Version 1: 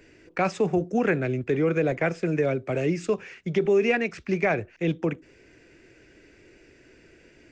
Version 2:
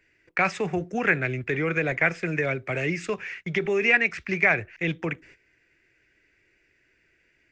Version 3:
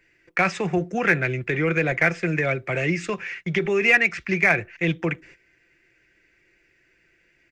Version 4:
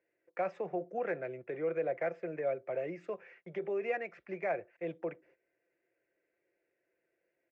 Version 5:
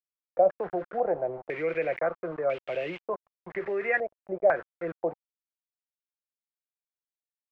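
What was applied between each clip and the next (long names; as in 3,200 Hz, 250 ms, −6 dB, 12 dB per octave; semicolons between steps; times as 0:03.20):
noise gate −50 dBFS, range −14 dB; octave-band graphic EQ 250/500/2,000 Hz −5/−4/+10 dB
comb filter 5.8 ms, depth 34%; in parallel at −9 dB: hard clipping −18 dBFS, distortion −11 dB
resonant band-pass 570 Hz, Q 3; level −4.5 dB
centre clipping without the shift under −46 dBFS; low-pass on a step sequencer 2 Hz 630–2,800 Hz; level +4 dB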